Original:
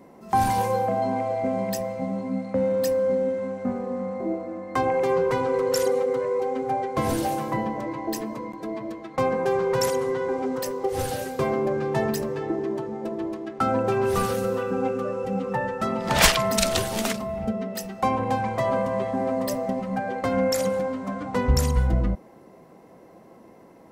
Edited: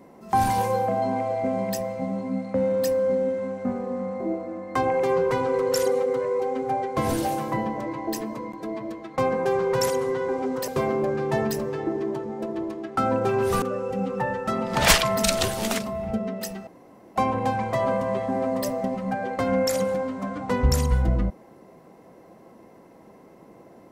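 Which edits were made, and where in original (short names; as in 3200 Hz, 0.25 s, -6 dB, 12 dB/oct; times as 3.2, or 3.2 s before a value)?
10.68–11.31 cut
14.25–14.96 cut
18.01 insert room tone 0.49 s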